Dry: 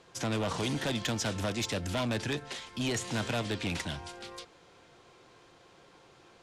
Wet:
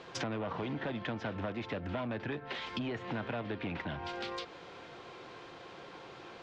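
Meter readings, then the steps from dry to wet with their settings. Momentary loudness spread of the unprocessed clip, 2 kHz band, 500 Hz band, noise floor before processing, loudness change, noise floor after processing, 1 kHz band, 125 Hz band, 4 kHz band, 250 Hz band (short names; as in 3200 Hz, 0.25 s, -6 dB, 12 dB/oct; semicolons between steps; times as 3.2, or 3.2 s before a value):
11 LU, -3.5 dB, -3.0 dB, -59 dBFS, -6.5 dB, -51 dBFS, -1.5 dB, -6.0 dB, -8.5 dB, -4.0 dB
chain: treble ducked by the level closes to 2100 Hz, closed at -33 dBFS; LPF 4000 Hz 12 dB/oct; low shelf 100 Hz -9.5 dB; compressor 6:1, threshold -45 dBFS, peak gain reduction 14 dB; gain +9.5 dB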